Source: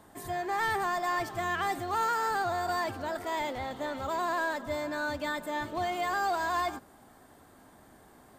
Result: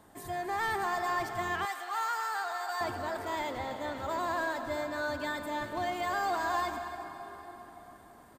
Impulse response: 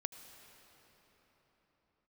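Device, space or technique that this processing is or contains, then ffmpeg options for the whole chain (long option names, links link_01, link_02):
cave: -filter_complex "[0:a]aecho=1:1:272:0.2[link_01];[1:a]atrim=start_sample=2205[link_02];[link_01][link_02]afir=irnorm=-1:irlink=0,asettb=1/sr,asplit=3[link_03][link_04][link_05];[link_03]atrim=end=1.654[link_06];[link_04]atrim=start=1.65:end=2.81,asetpts=PTS-STARTPTS,afade=type=in:duration=0.004:curve=qsin,afade=type=out:start_time=1.156:duration=0.004:curve=qsin,highpass=880[link_07];[link_05]atrim=start=2.806[link_08];[link_06][link_07]acrossfade=duration=0.004:curve1=hsin:curve2=qsin[link_09];[link_09][link_08]acrossfade=duration=0.004:curve1=qsin:curve2=hsin"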